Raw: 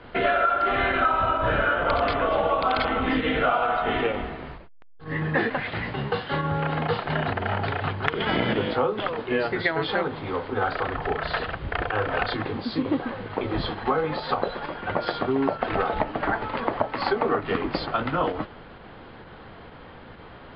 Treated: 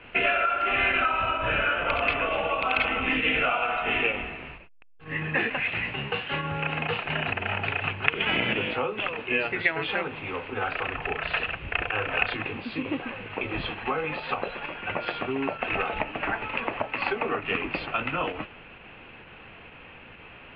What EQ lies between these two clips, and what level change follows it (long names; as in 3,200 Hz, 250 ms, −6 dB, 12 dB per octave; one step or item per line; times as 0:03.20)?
low-pass with resonance 2,600 Hz, resonance Q 11
−6.0 dB